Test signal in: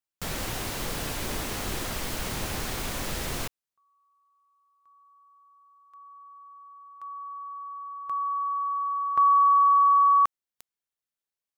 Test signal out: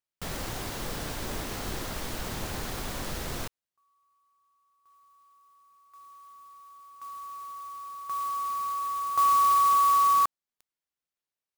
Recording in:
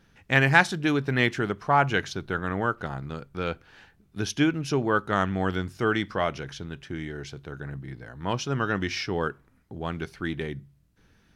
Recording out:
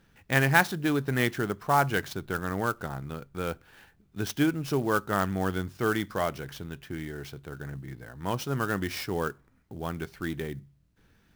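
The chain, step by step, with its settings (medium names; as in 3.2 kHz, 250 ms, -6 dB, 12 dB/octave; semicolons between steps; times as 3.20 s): dynamic bell 2.5 kHz, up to -4 dB, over -43 dBFS, Q 1.8; sampling jitter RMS 0.023 ms; trim -2 dB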